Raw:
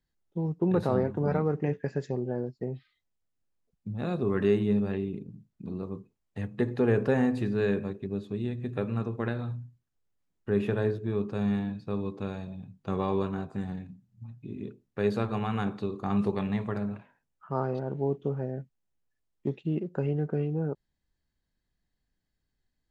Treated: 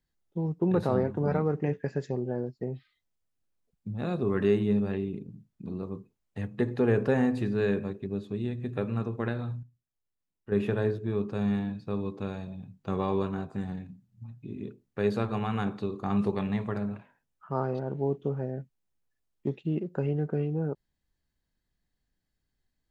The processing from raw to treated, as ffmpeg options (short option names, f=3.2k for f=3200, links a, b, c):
-filter_complex "[0:a]asplit=3[a][b][c];[a]atrim=end=9.632[d];[b]atrim=start=9.628:end=10.522,asetpts=PTS-STARTPTS,volume=-8.5dB[e];[c]atrim=start=10.518[f];[d][e]acrossfade=d=0.004:c1=hsin:c2=hsin[g];[g][f]acrossfade=d=0.004:c1=hsin:c2=hsin"